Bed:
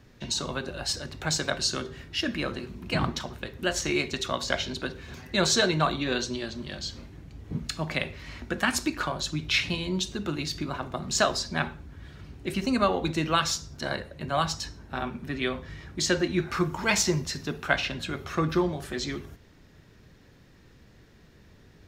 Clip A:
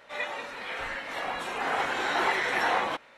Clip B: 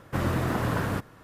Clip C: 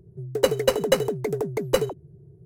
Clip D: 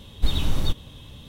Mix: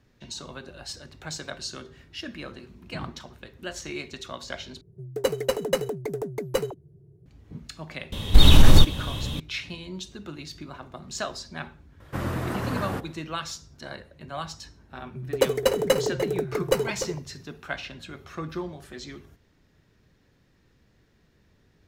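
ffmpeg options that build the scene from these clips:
ffmpeg -i bed.wav -i cue0.wav -i cue1.wav -i cue2.wav -i cue3.wav -filter_complex "[3:a]asplit=2[link_01][link_02];[0:a]volume=-8dB[link_03];[4:a]alimiter=level_in=13.5dB:limit=-1dB:release=50:level=0:latency=1[link_04];[link_02]asplit=2[link_05][link_06];[link_06]adelay=297.4,volume=-10dB,highshelf=frequency=4000:gain=-6.69[link_07];[link_05][link_07]amix=inputs=2:normalize=0[link_08];[link_03]asplit=2[link_09][link_10];[link_09]atrim=end=4.814[link_11];[link_01]atrim=end=2.45,asetpts=PTS-STARTPTS,volume=-4.5dB[link_12];[link_10]atrim=start=7.256[link_13];[link_04]atrim=end=1.28,asetpts=PTS-STARTPTS,volume=-1dB,afade=type=in:duration=0.004:curve=hsin,afade=type=out:start_time=1.276:duration=0.004:curve=hsin,adelay=8120[link_14];[2:a]atrim=end=1.23,asetpts=PTS-STARTPTS,volume=-2.5dB,afade=type=in:duration=0.004:curve=hsin,afade=type=out:start_time=1.226:duration=0.004:curve=hsin,adelay=12000[link_15];[link_08]atrim=end=2.45,asetpts=PTS-STARTPTS,volume=-1.5dB,afade=type=in:duration=0.004:curve=hsin,afade=type=out:start_time=2.446:duration=0.004:curve=hsin,adelay=14980[link_16];[link_11][link_12]acrossfade=duration=0.004:curve1=hsin:curve2=hsin[link_17];[link_17][link_13]acrossfade=duration=0.004:curve1=hsin:curve2=hsin[link_18];[link_18][link_14][link_15][link_16]amix=inputs=4:normalize=0" out.wav

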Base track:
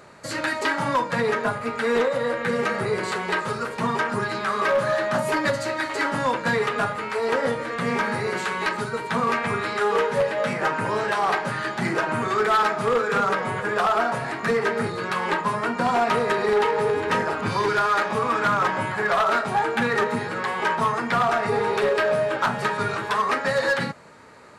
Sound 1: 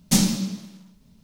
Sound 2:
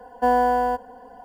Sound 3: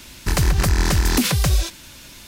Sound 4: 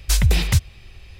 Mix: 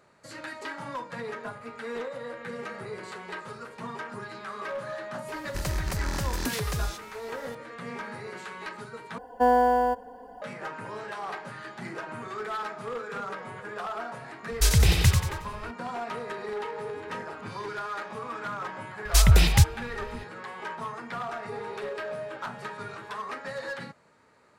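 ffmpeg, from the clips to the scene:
ffmpeg -i bed.wav -i cue0.wav -i cue1.wav -i cue2.wav -i cue3.wav -filter_complex "[4:a]asplit=2[link_01][link_02];[0:a]volume=-13.5dB[link_03];[2:a]equalizer=frequency=370:width=2.7:gain=6.5[link_04];[link_01]aecho=1:1:91|182|273|364|455:0.596|0.25|0.105|0.0441|0.0185[link_05];[link_03]asplit=2[link_06][link_07];[link_06]atrim=end=9.184[link_08];[link_04]atrim=end=1.24,asetpts=PTS-STARTPTS,volume=-2.5dB[link_09];[link_07]atrim=start=10.416[link_10];[3:a]atrim=end=2.27,asetpts=PTS-STARTPTS,volume=-12.5dB,afade=type=in:duration=0.004:curve=hsin,afade=type=out:start_time=2.266:duration=0.004:curve=hsin,adelay=5280[link_11];[link_05]atrim=end=1.19,asetpts=PTS-STARTPTS,volume=-3dB,afade=type=in:duration=0.004:curve=hsin,afade=type=out:start_time=1.186:duration=0.004:curve=hsin,adelay=14520[link_12];[link_02]atrim=end=1.19,asetpts=PTS-STARTPTS,volume=-0.5dB,afade=type=in:duration=0.004:curve=hsin,afade=type=out:start_time=1.186:duration=0.004:curve=hsin,adelay=19050[link_13];[link_08][link_09]acrossfade=duration=0.004:curve1=hsin:curve2=hsin[link_14];[link_14][link_10]acrossfade=duration=0.004:curve1=hsin:curve2=hsin[link_15];[link_15][link_11][link_12][link_13]amix=inputs=4:normalize=0" out.wav

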